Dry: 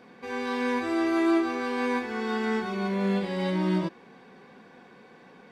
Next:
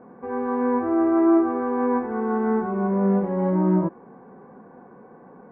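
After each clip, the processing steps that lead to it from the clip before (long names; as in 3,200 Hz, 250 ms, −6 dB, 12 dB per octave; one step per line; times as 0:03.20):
low-pass filter 1,200 Hz 24 dB per octave
level +6 dB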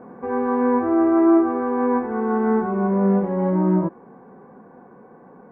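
speech leveller within 5 dB 2 s
level +2 dB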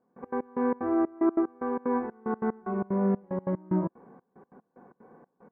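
gate pattern "..x.x..xx.xxx" 186 BPM −24 dB
level −7 dB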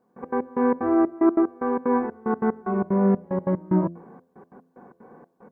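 hum removal 85.57 Hz, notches 8
level +6 dB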